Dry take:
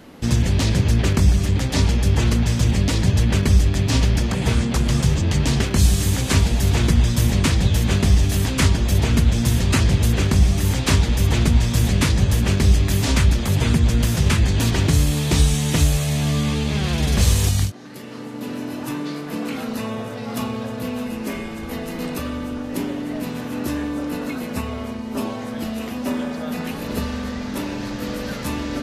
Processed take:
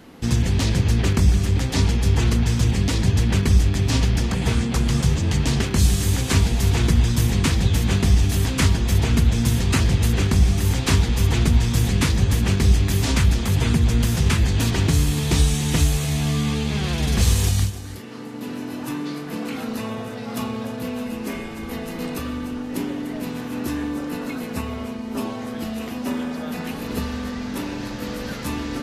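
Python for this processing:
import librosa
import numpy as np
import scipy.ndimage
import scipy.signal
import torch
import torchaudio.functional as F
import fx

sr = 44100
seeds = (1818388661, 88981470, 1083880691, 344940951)

y = fx.notch(x, sr, hz=590.0, q=12.0)
y = y + 10.0 ** (-14.5 / 20.0) * np.pad(y, (int(295 * sr / 1000.0), 0))[:len(y)]
y = F.gain(torch.from_numpy(y), -1.5).numpy()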